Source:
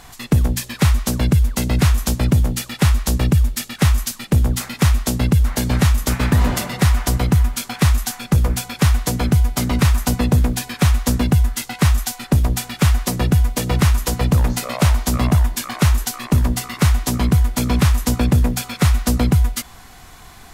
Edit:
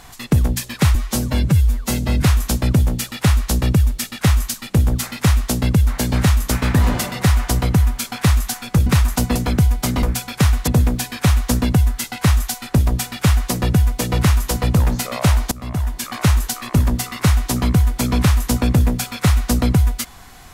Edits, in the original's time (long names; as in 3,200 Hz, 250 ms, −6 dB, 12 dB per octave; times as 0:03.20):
0:00.95–0:01.80: time-stretch 1.5×
0:08.44–0:09.09: swap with 0:09.76–0:10.25
0:15.09–0:15.76: fade in, from −22 dB